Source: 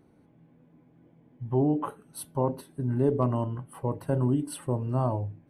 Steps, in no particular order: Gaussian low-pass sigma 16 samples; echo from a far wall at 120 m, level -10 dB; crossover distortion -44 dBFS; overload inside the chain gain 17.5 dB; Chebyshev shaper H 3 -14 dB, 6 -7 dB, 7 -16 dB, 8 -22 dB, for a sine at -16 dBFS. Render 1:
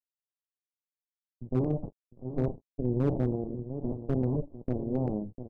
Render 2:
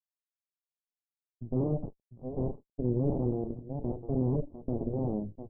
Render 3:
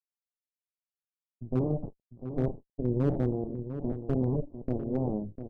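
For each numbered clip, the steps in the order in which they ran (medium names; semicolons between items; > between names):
Chebyshev shaper > echo from a far wall > crossover distortion > Gaussian low-pass > overload inside the chain; crossover distortion > echo from a far wall > Chebyshev shaper > overload inside the chain > Gaussian low-pass; crossover distortion > Chebyshev shaper > Gaussian low-pass > overload inside the chain > echo from a far wall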